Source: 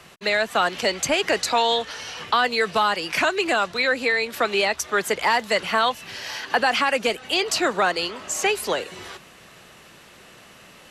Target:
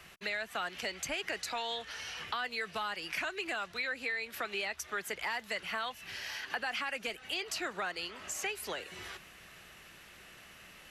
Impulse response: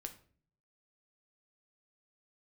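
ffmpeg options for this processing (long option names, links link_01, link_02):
-af "equalizer=frequency=125:width_type=o:width=1:gain=-7,equalizer=frequency=250:width_type=o:width=1:gain=-7,equalizer=frequency=500:width_type=o:width=1:gain=-8,equalizer=frequency=1000:width_type=o:width=1:gain=-7,equalizer=frequency=4000:width_type=o:width=1:gain=-5,equalizer=frequency=8000:width_type=o:width=1:gain=-6,acompressor=threshold=-39dB:ratio=2,volume=-1dB"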